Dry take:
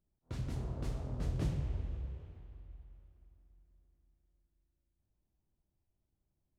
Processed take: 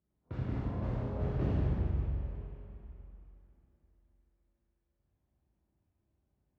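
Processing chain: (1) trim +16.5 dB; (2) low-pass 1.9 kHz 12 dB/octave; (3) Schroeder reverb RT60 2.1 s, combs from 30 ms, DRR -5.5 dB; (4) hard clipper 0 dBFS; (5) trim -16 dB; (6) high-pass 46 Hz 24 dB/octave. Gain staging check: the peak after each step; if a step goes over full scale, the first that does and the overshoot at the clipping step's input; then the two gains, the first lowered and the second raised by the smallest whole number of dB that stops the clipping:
-8.0 dBFS, -8.5 dBFS, -2.5 dBFS, -2.5 dBFS, -18.5 dBFS, -20.0 dBFS; nothing clips

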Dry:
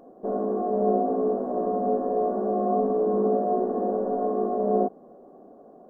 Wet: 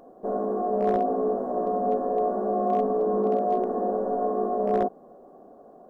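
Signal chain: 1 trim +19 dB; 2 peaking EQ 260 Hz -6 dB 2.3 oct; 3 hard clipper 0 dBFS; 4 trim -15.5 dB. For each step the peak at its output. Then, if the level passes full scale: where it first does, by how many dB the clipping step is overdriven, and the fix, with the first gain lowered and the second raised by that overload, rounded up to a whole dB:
+8.5 dBFS, +5.0 dBFS, 0.0 dBFS, -15.5 dBFS; step 1, 5.0 dB; step 1 +14 dB, step 4 -10.5 dB

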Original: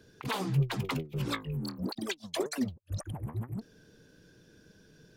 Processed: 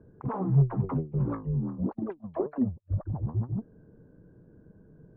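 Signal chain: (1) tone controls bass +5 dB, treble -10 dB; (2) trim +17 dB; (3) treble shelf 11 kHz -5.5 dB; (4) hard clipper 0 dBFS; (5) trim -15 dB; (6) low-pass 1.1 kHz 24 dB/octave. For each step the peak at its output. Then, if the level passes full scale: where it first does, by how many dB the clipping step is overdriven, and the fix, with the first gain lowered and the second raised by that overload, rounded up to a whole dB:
-14.0 dBFS, +3.0 dBFS, +3.0 dBFS, 0.0 dBFS, -15.0 dBFS, -15.0 dBFS; step 2, 3.0 dB; step 2 +14 dB, step 5 -12 dB

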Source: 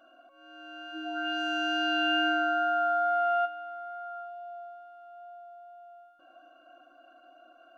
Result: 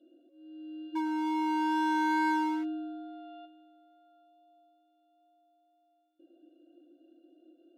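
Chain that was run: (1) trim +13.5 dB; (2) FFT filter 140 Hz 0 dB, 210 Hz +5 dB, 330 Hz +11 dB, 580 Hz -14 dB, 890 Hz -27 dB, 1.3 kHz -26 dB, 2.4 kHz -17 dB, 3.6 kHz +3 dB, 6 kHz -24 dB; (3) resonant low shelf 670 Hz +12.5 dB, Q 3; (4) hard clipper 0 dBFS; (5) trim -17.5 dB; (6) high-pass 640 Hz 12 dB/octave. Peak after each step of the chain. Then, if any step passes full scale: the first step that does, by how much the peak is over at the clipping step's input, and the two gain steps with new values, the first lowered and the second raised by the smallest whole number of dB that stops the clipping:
-3.5 dBFS, -5.0 dBFS, +10.0 dBFS, 0.0 dBFS, -17.5 dBFS, -20.5 dBFS; step 3, 10.0 dB; step 1 +3.5 dB, step 5 -7.5 dB

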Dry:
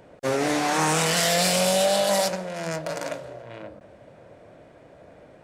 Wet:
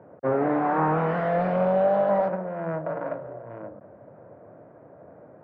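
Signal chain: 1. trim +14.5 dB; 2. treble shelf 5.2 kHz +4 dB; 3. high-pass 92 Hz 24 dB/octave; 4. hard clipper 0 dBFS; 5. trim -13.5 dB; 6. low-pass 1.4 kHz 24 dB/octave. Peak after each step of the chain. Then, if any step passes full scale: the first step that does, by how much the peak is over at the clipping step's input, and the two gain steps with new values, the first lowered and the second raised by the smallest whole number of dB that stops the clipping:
+4.5 dBFS, +6.0 dBFS, +7.0 dBFS, 0.0 dBFS, -13.5 dBFS, -13.0 dBFS; step 1, 7.0 dB; step 1 +7.5 dB, step 5 -6.5 dB

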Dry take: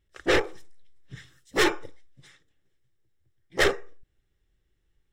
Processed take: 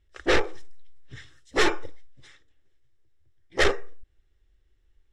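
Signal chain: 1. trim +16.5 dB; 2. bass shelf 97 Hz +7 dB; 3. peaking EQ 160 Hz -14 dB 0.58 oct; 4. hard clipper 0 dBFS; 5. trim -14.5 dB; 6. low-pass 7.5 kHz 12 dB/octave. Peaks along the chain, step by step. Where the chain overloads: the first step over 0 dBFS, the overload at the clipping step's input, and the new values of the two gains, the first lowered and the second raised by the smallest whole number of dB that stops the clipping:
+3.5 dBFS, +6.5 dBFS, +7.0 dBFS, 0.0 dBFS, -14.5 dBFS, -13.5 dBFS; step 1, 7.0 dB; step 1 +9.5 dB, step 5 -7.5 dB

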